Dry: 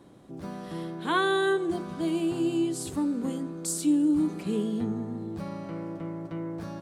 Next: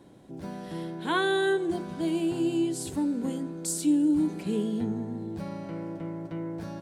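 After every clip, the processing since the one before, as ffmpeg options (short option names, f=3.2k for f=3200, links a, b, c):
-af "bandreject=f=1.2k:w=6.3"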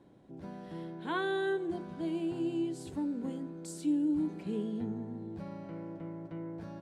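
-af "lowpass=f=2.7k:p=1,volume=-6.5dB"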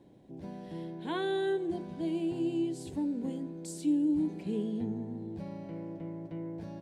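-af "equalizer=f=1.3k:t=o:w=0.61:g=-11,volume=2dB"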